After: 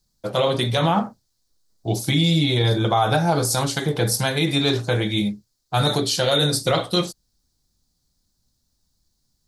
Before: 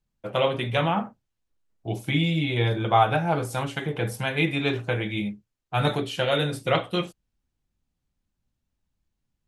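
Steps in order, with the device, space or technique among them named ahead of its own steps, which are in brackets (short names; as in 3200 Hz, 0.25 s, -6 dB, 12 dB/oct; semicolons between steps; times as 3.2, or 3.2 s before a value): over-bright horn tweeter (resonant high shelf 3500 Hz +9 dB, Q 3; limiter -15.5 dBFS, peak gain reduction 7.5 dB); gain +6.5 dB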